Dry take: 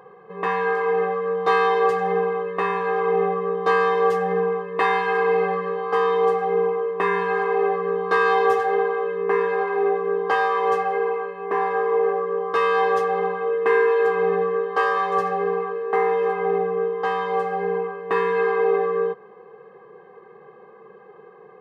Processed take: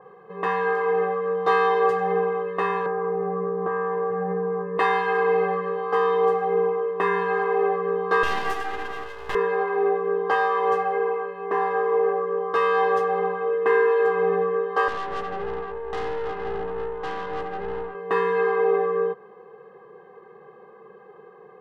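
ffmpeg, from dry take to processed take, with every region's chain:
-filter_complex "[0:a]asettb=1/sr,asplit=3[a][b][c];[a]atrim=end=2.864[d];[b]atrim=start=2.86:end=4.78,asetpts=PTS-STARTPTS,afade=t=in:d=0.004:c=qsin,afade=t=out:st=1.916:d=0.004:c=qsin,lowpass=f=1.8k:w=0.5412,lowpass=f=1.8k:w=1.3066,equalizer=f=160:t=o:w=2.3:g=6.5,acompressor=threshold=-21dB:ratio=6:attack=3.2:release=140:knee=1:detection=peak[e];[c]atrim=start=4.776[f];[d][e]acrossfade=d=0.004:c1=hsin:c2=qsin[g];[g][f]acrossfade=d=0.004:c1=qsin:c2=hsin,asettb=1/sr,asplit=3[h][i][j];[h]atrim=end=8.234[k];[i]atrim=start=8.23:end=9.35,asetpts=PTS-STARTPTS,afade=t=in:d=0.004:c=qsin,afade=t=out:st=1.116:d=0.004:c=qsin,highpass=740,highshelf=f=2.7k:g=11.5,aeval=exprs='max(val(0),0)':c=same[l];[j]atrim=start=9.346[m];[k][l]acrossfade=d=0.004:c1=hsin:c2=qsin[n];[n][m]acrossfade=d=0.004:c1=qsin:c2=hsin,asettb=1/sr,asplit=3[o][p][q];[o]atrim=end=14.884[r];[p]atrim=start=14.88:end=17.95,asetpts=PTS-STARTPTS,afade=t=in:d=0.004:c=qsin,afade=t=out:st=3.066:d=0.004:c=qsin,highshelf=f=3.9k:g=-7,aeval=exprs='(tanh(17.8*val(0)+0.75)-tanh(0.75))/17.8':c=same[s];[q]atrim=start=17.946[t];[r][s]acrossfade=d=0.004:c1=hsin:c2=qsin[u];[u][t]acrossfade=d=0.004:c1=qsin:c2=hsin,bandreject=f=2.3k:w=7.8,adynamicequalizer=threshold=0.0141:dfrequency=3000:dqfactor=0.7:tfrequency=3000:tqfactor=0.7:attack=5:release=100:ratio=0.375:range=3:mode=cutabove:tftype=highshelf,volume=-1dB"

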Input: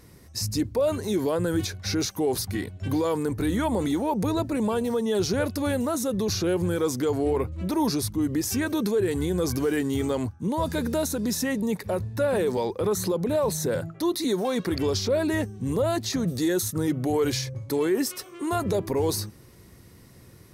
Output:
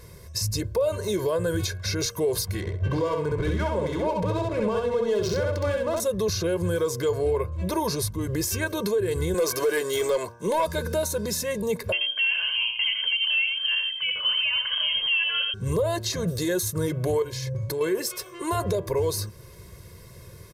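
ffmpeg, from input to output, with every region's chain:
-filter_complex "[0:a]asettb=1/sr,asplit=3[a][b][c];[a]atrim=end=2.604[d];[b]atrim=start=2.6:end=6,asetpts=PTS-STARTPTS,afade=t=in:d=0.004:c=qsin,afade=t=out:st=3.396:d=0.004:c=qsin,adynamicsmooth=sensitivity=6:basefreq=1.1k,aecho=1:1:66|132|198:0.708|0.163|0.0375,atrim=end_sample=149940[e];[c]atrim=start=5.996[f];[d][e]acrossfade=d=0.004:c1=hsin:c2=qsin[g];[g][f]acrossfade=d=0.004:c1=qsin:c2=hsin,asettb=1/sr,asplit=3[h][i][j];[h]atrim=end=9.344[k];[i]atrim=start=9.34:end=10.67,asetpts=PTS-STARTPTS,afade=t=in:d=0.004:c=qsin,afade=t=out:st=1.326:d=0.004:c=qsin,highpass=380,aeval=exprs='0.141*sin(PI/2*1.58*val(0)/0.141)':c=same[l];[j]atrim=start=10.666[m];[k][l]acrossfade=d=0.004:c1=hsin:c2=qsin[n];[n][m]acrossfade=d=0.004:c1=qsin:c2=hsin,asettb=1/sr,asplit=3[o][p][q];[o]atrim=end=11.924[r];[p]atrim=start=11.92:end=15.54,asetpts=PTS-STARTPTS,afade=t=in:d=0.004:c=qsin,afade=t=out:st=3.616:d=0.004:c=qsin,aecho=1:1:85:0.501,atrim=end_sample=159642,lowpass=f=2.8k:t=q:w=0.5098,lowpass=f=2.8k:t=q:w=0.6013,lowpass=f=2.8k:t=q:w=0.9,lowpass=f=2.8k:t=q:w=2.563,afreqshift=-3300[s];[q]atrim=start=15.536[t];[r][s]acrossfade=d=0.004:c1=hsin:c2=qsin[u];[u][t]acrossfade=d=0.004:c1=qsin:c2=hsin,asettb=1/sr,asplit=3[v][w][x];[v]atrim=end=17.224[y];[w]atrim=start=17.22:end=17.81,asetpts=PTS-STARTPTS,afade=t=in:d=0.004:c=qsin,afade=t=out:st=0.586:d=0.004:c=qsin,equalizer=f=210:w=0.96:g=7,acompressor=threshold=-30dB:ratio=5:attack=3.2:release=140:knee=1:detection=peak[z];[x]atrim=start=17.806[aa];[y][z]acrossfade=d=0.004:c1=hsin:c2=qsin[ab];[ab][aa]acrossfade=d=0.004:c1=qsin:c2=hsin,aecho=1:1:1.9:0.84,bandreject=f=117.3:t=h:w=4,bandreject=f=234.6:t=h:w=4,bandreject=f=351.9:t=h:w=4,bandreject=f=469.2:t=h:w=4,bandreject=f=586.5:t=h:w=4,bandreject=f=703.8:t=h:w=4,bandreject=f=821.1:t=h:w=4,bandreject=f=938.4:t=h:w=4,bandreject=f=1.0557k:t=h:w=4,bandreject=f=1.173k:t=h:w=4,bandreject=f=1.2903k:t=h:w=4,bandreject=f=1.4076k:t=h:w=4,bandreject=f=1.5249k:t=h:w=4,bandreject=f=1.6422k:t=h:w=4,alimiter=limit=-19.5dB:level=0:latency=1:release=374,volume=3dB"

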